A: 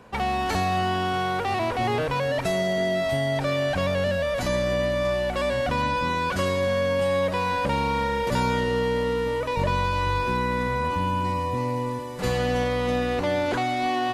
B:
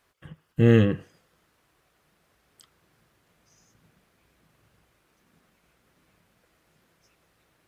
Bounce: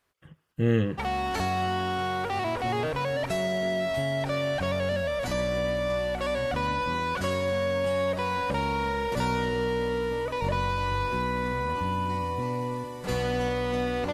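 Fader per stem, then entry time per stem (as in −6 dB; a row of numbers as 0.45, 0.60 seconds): −3.5, −6.0 decibels; 0.85, 0.00 seconds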